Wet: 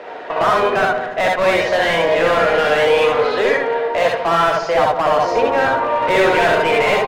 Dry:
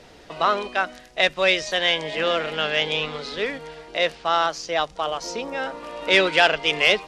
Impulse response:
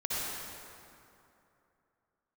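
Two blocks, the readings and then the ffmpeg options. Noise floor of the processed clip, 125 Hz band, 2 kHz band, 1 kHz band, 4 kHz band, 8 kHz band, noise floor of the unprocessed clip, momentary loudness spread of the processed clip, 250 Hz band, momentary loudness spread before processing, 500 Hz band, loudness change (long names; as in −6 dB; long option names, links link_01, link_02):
−27 dBFS, +9.0 dB, +4.5 dB, +9.5 dB, −2.5 dB, can't be measured, −48 dBFS, 4 LU, +7.5 dB, 11 LU, +10.0 dB, +6.5 dB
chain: -filter_complex "[0:a]acrossover=split=320 2800:gain=0.178 1 0.2[link_01][link_02][link_03];[link_01][link_02][link_03]amix=inputs=3:normalize=0,asplit=2[link_04][link_05];[link_05]highpass=frequency=720:poles=1,volume=29dB,asoftclip=type=tanh:threshold=-5dB[link_06];[link_04][link_06]amix=inputs=2:normalize=0,lowpass=frequency=1000:poles=1,volume=-6dB,asplit=2[link_07][link_08];[link_08]adelay=146,lowpass=frequency=1200:poles=1,volume=-9.5dB,asplit=2[link_09][link_10];[link_10]adelay=146,lowpass=frequency=1200:poles=1,volume=0.54,asplit=2[link_11][link_12];[link_12]adelay=146,lowpass=frequency=1200:poles=1,volume=0.54,asplit=2[link_13][link_14];[link_14]adelay=146,lowpass=frequency=1200:poles=1,volume=0.54,asplit=2[link_15][link_16];[link_16]adelay=146,lowpass=frequency=1200:poles=1,volume=0.54,asplit=2[link_17][link_18];[link_18]adelay=146,lowpass=frequency=1200:poles=1,volume=0.54[link_19];[link_07][link_09][link_11][link_13][link_15][link_17][link_19]amix=inputs=7:normalize=0,volume=12.5dB,asoftclip=hard,volume=-12.5dB[link_20];[1:a]atrim=start_sample=2205,atrim=end_sample=3528[link_21];[link_20][link_21]afir=irnorm=-1:irlink=0,volume=1.5dB"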